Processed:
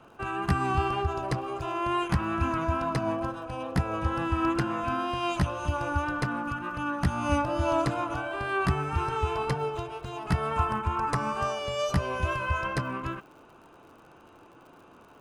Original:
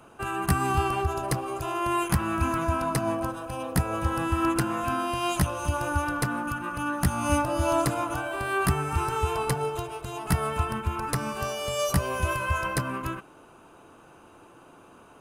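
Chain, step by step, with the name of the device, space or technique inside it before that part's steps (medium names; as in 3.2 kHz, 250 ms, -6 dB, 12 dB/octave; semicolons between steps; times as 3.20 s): lo-fi chain (low-pass 4.8 kHz 12 dB/octave; wow and flutter 21 cents; crackle 79 per s -47 dBFS); 10.51–11.59 s: graphic EQ 1/4/8 kHz +7/-3/+5 dB; trim -1.5 dB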